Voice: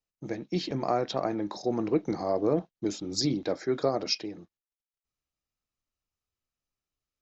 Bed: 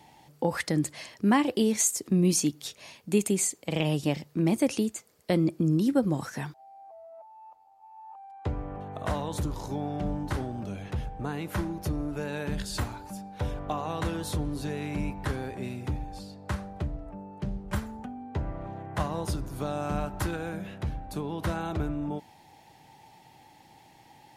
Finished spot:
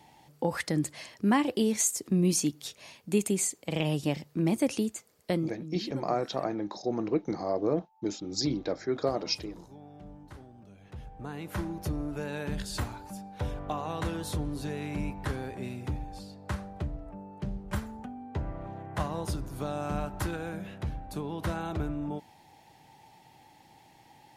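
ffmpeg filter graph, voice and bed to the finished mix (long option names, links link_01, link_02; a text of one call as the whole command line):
ffmpeg -i stem1.wav -i stem2.wav -filter_complex "[0:a]adelay=5200,volume=-2dB[link_01];[1:a]volume=13dB,afade=type=out:start_time=5.26:duration=0.35:silence=0.177828,afade=type=in:start_time=10.78:duration=0.97:silence=0.177828[link_02];[link_01][link_02]amix=inputs=2:normalize=0" out.wav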